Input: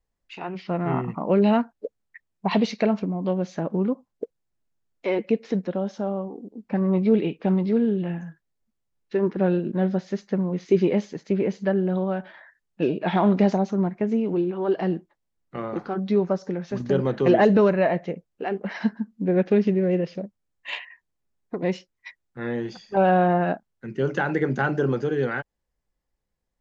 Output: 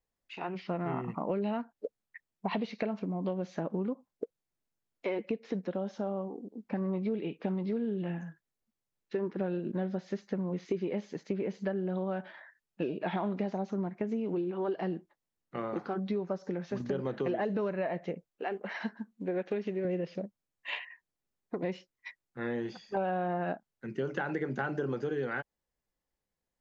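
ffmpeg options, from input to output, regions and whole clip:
-filter_complex "[0:a]asettb=1/sr,asplit=3[a][b][c];[a]atrim=end=18.284[d];[b]atrim=start=18.28:end=19.85,asetpts=PTS-STARTPTS,afade=t=in:d=0.004:c=qsin,afade=t=out:st=1.566:d=0.004:c=qsin,equalizer=f=110:t=o:w=2.4:g=-11.5,bandreject=f=5k:w=12[e];[c]atrim=start=19.846[f];[d][e]acrossfade=d=0.004:c1=hsin:c2=qsin[g];[g][f]acrossfade=d=0.004:c1=qsin:c2=hsin,acrossover=split=3900[h][i];[i]acompressor=threshold=-54dB:ratio=4:attack=1:release=60[j];[h][j]amix=inputs=2:normalize=0,lowshelf=f=95:g=-9.5,acompressor=threshold=-26dB:ratio=6,volume=-3.5dB"

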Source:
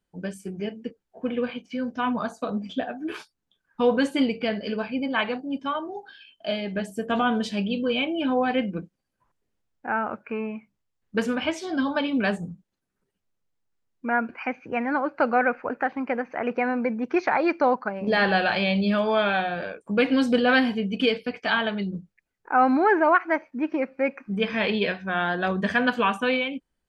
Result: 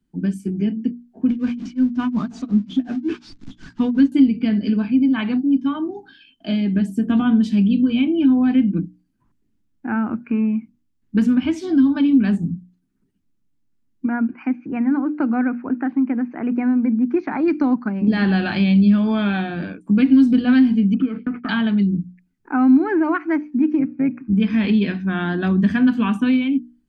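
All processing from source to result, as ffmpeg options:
-filter_complex "[0:a]asettb=1/sr,asplit=3[a][b][c];[a]atrim=end=1.294[d];[b]atrim=start=1.29:end=4.12,asetpts=PTS-STARTPTS,afade=t=in:d=0.004:c=qsin,afade=t=out:st=2.826:d=0.004:c=qsin,aeval=exprs='val(0)+0.5*0.0168*sgn(val(0))':c=same,lowpass=f=6.3k:w=0.5412,lowpass=f=6.3k:w=1.3066,tremolo=f=5.5:d=0.98[e];[c]atrim=start=4.116[f];[d][e]acrossfade=d=0.004:c1=hsin:c2=qsin[g];[g][f]acrossfade=d=0.004:c1=qsin:c2=hsin,asettb=1/sr,asplit=3[h][i][j];[h]atrim=end=14.064[k];[i]atrim=start=14.06:end=17.48,asetpts=PTS-STARTPTS,afade=t=in:d=0.004:c=qsin,afade=t=out:st=3.416:d=0.004:c=qsin,lowpass=f=1.4k:p=1,lowshelf=f=130:g=-10.5[l];[j]atrim=start=17.476[m];[k][l]acrossfade=d=0.004:c1=hsin:c2=qsin[n];[n][m]acrossfade=d=0.004:c1=qsin:c2=hsin,asettb=1/sr,asplit=3[o][p][q];[o]atrim=end=20.944[r];[p]atrim=start=20.94:end=21.49,asetpts=PTS-STARTPTS,afade=t=in:d=0.004:c=qsin,afade=t=out:st=0.546:d=0.004:c=qsin,agate=range=-33dB:threshold=-45dB:ratio=3:release=100:detection=peak,lowpass=f=1.3k:t=q:w=14,acompressor=threshold=-29dB:ratio=3:attack=3.2:release=140:knee=1:detection=peak[s];[q]atrim=start=21.486[t];[r][s]acrossfade=d=0.004:c1=hsin:c2=qsin[u];[u][t]acrossfade=d=0.004:c1=qsin:c2=hsin,asettb=1/sr,asplit=3[v][w][x];[v]atrim=end=23.794[y];[w]atrim=start=23.79:end=24.33,asetpts=PTS-STARTPTS,afade=t=in:d=0.004:c=qsin,afade=t=out:st=0.536:d=0.004:c=qsin,aemphasis=mode=reproduction:type=75kf,tremolo=f=110:d=0.519[z];[x]atrim=start=24.326[aa];[y][z]acrossfade=d=0.004:c1=hsin:c2=qsin[ab];[ab][aa]acrossfade=d=0.004:c1=qsin:c2=hsin,lowshelf=f=380:t=q:w=3:g=10.5,bandreject=f=60:t=h:w=6,bandreject=f=120:t=h:w=6,bandreject=f=180:t=h:w=6,bandreject=f=240:t=h:w=6,bandreject=f=300:t=h:w=6,acrossover=split=140[ac][ad];[ad]acompressor=threshold=-18dB:ratio=2[ae];[ac][ae]amix=inputs=2:normalize=0"

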